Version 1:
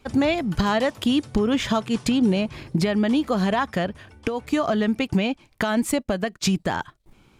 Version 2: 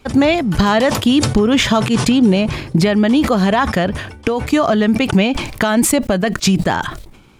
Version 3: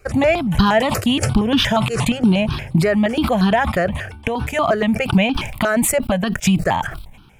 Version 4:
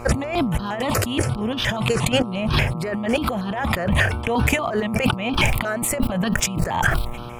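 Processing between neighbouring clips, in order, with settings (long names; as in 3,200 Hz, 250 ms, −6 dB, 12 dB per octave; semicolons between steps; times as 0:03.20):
level that may fall only so fast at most 66 dB per second; level +7.5 dB
step-sequenced phaser 8.5 Hz 920–2,100 Hz; level +1 dB
compressor whose output falls as the input rises −26 dBFS, ratio −1; hum with harmonics 120 Hz, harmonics 11, −40 dBFS −2 dB per octave; boost into a limiter +8 dB; level −4.5 dB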